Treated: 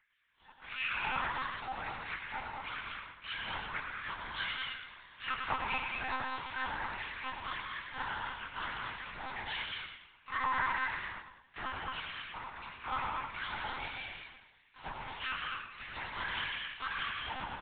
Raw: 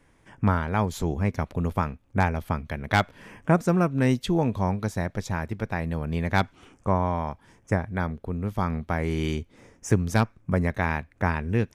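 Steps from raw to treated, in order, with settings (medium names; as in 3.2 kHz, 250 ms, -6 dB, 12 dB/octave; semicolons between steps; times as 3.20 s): pitch shift switched off and on +11 st, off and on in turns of 74 ms; bass shelf 290 Hz -2.5 dB; hard clipper -23 dBFS, distortion -8 dB; Chebyshev shaper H 4 -21 dB, 7 -22 dB, 8 -18 dB, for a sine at -23 dBFS; plain phase-vocoder stretch 1.5×; saturation -23.5 dBFS, distortion -18 dB; LFO high-pass sine 1.6 Hz 880–2400 Hz; frequency-shifting echo 102 ms, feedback 42%, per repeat -39 Hz, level -6 dB; gated-style reverb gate 250 ms rising, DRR 2 dB; monotone LPC vocoder at 8 kHz 260 Hz; trim -5 dB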